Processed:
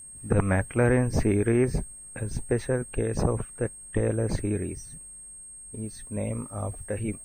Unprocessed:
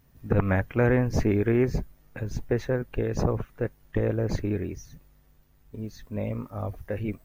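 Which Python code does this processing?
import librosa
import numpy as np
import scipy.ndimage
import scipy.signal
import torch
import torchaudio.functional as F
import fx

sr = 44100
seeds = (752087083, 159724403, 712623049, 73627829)

y = x + 10.0 ** (-42.0 / 20.0) * np.sin(2.0 * np.pi * 8500.0 * np.arange(len(x)) / sr)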